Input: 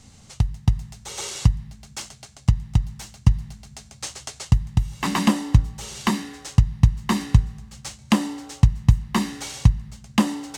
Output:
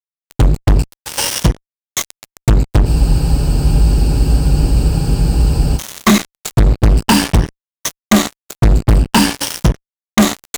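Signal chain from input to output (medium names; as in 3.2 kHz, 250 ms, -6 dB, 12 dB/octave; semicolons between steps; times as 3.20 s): drifting ripple filter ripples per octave 1.2, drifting +0.49 Hz, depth 18 dB; fuzz box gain 27 dB, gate -27 dBFS; spectral freeze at 2.88 s, 2.89 s; trim +7.5 dB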